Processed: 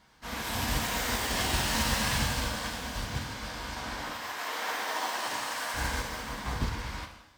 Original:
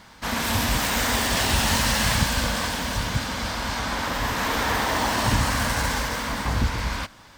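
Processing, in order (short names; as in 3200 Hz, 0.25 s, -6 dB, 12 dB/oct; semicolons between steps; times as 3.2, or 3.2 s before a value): 4.1–5.74 HPF 480 Hz 12 dB/oct; non-linear reverb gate 0.31 s falling, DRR 0 dB; upward expander 1.5:1, over -30 dBFS; gain -8.5 dB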